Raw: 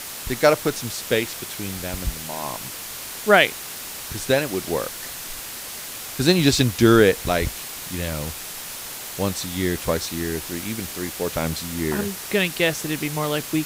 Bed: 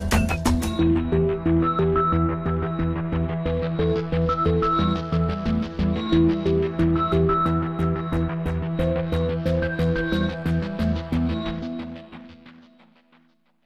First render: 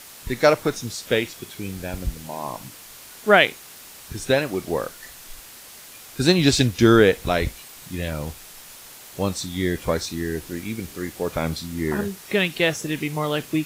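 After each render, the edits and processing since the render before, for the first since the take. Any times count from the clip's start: noise print and reduce 9 dB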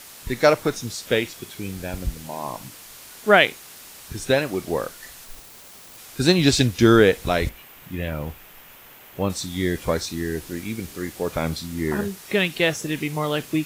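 5.25–5.98 self-modulated delay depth 0.97 ms; 7.49–9.3 band shelf 6400 Hz -11.5 dB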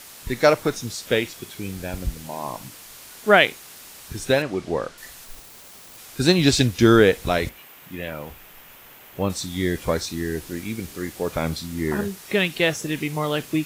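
4.42–4.98 air absorption 78 m; 7.38–8.3 HPF 110 Hz -> 440 Hz 6 dB/oct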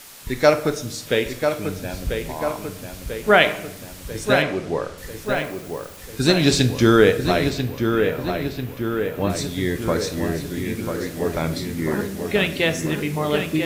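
darkening echo 0.992 s, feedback 64%, low-pass 3200 Hz, level -6 dB; shoebox room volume 210 m³, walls mixed, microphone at 0.32 m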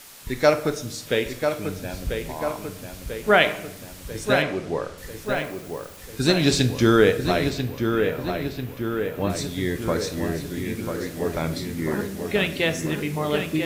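gain -2.5 dB

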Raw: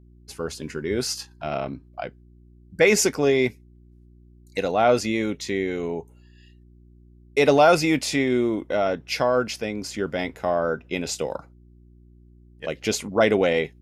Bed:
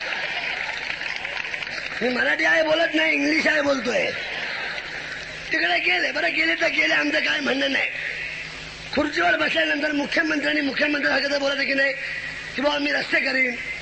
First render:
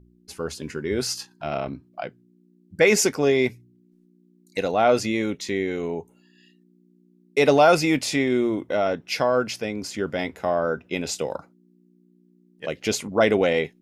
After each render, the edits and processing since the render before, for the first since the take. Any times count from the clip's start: de-hum 60 Hz, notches 2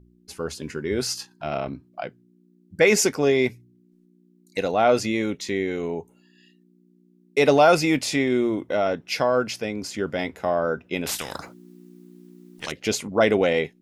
11.06–12.72 spectral compressor 4:1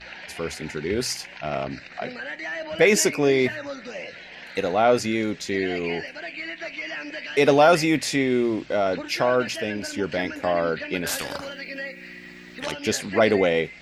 add bed -13 dB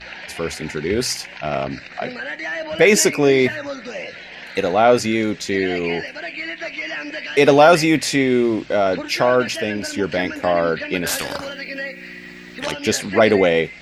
gain +5 dB; limiter -1 dBFS, peak gain reduction 1.5 dB

